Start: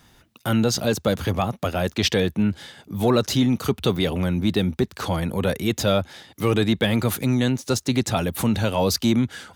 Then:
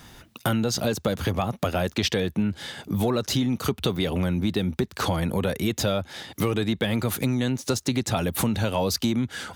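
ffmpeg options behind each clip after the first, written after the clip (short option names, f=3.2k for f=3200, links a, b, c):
-af "acompressor=threshold=-29dB:ratio=5,volume=7dB"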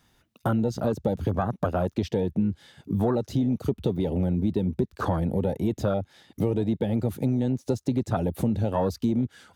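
-af "afwtdn=0.0501"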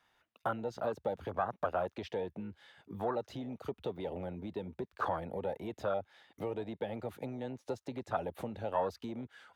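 -filter_complex "[0:a]acrossover=split=510 3300:gain=0.141 1 0.224[a][b][c];[a][b][c]amix=inputs=3:normalize=0,volume=-3dB"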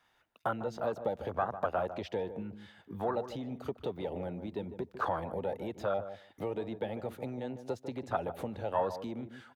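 -filter_complex "[0:a]asplit=2[a][b];[b]adelay=150,lowpass=f=870:p=1,volume=-9.5dB,asplit=2[c][d];[d]adelay=150,lowpass=f=870:p=1,volume=0.15[e];[a][c][e]amix=inputs=3:normalize=0,volume=1.5dB"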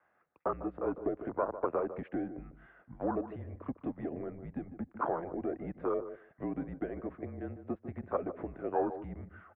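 -af "highpass=190,highpass=f=250:t=q:w=0.5412,highpass=f=250:t=q:w=1.307,lowpass=f=2.2k:t=q:w=0.5176,lowpass=f=2.2k:t=q:w=0.7071,lowpass=f=2.2k:t=q:w=1.932,afreqshift=-160"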